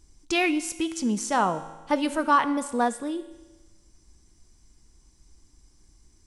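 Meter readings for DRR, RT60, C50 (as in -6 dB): 11.0 dB, 1.2 s, 13.0 dB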